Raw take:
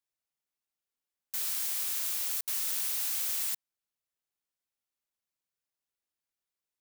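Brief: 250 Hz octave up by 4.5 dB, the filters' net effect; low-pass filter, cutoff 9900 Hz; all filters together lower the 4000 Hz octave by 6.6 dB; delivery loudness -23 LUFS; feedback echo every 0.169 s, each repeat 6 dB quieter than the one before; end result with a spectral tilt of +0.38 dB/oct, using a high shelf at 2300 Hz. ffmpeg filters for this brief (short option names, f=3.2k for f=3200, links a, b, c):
-af "lowpass=9.9k,equalizer=f=250:t=o:g=6,highshelf=f=2.3k:g=-5,equalizer=f=4k:t=o:g=-3.5,aecho=1:1:169|338|507|676|845|1014:0.501|0.251|0.125|0.0626|0.0313|0.0157,volume=17.5dB"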